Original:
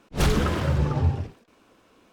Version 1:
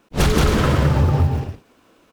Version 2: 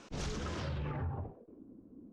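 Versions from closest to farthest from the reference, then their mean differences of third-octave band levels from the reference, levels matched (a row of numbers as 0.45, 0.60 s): 1, 2; 4.5, 7.5 dB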